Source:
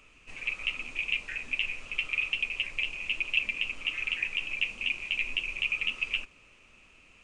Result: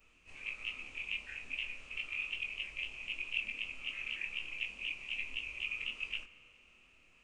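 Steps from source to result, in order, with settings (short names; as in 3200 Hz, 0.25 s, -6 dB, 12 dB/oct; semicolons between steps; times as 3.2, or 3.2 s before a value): short-time reversal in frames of 54 ms; spring tank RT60 3.1 s, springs 35 ms, chirp 75 ms, DRR 14 dB; gain -5.5 dB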